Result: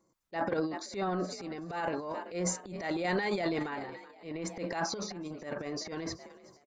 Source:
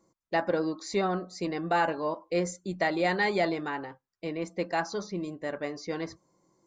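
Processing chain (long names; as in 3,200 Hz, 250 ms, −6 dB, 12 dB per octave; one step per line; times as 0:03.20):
sample-and-hold tremolo
echo with shifted repeats 377 ms, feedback 52%, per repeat +43 Hz, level −21 dB
transient designer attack −9 dB, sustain +12 dB
level −4 dB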